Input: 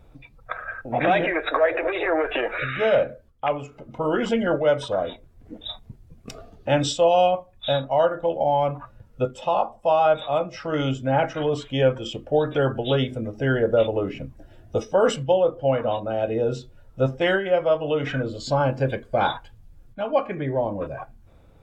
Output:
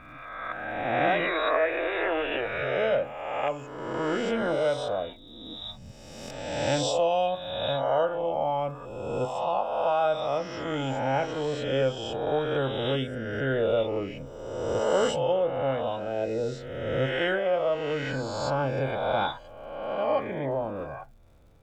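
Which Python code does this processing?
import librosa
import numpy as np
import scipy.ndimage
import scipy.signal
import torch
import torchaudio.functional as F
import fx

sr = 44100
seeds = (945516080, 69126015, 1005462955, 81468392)

y = fx.spec_swells(x, sr, rise_s=1.51)
y = fx.dmg_crackle(y, sr, seeds[0], per_s=160.0, level_db=-49.0)
y = y * librosa.db_to_amplitude(-8.0)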